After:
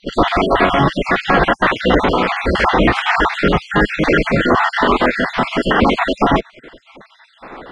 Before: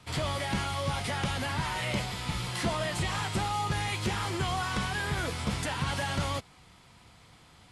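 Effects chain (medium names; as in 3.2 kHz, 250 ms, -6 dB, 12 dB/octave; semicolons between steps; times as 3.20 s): random holes in the spectrogram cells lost 50%; low-pass 1.3 kHz 12 dB/octave; band-stop 930 Hz, Q 14; spectral gate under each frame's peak -10 dB weak; loudness maximiser +32.5 dB; trim -1 dB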